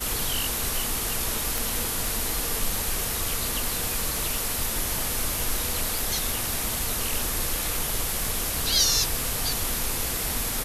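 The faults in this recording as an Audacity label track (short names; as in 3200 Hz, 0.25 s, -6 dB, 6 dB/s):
1.580000	1.580000	pop
5.990000	5.990000	pop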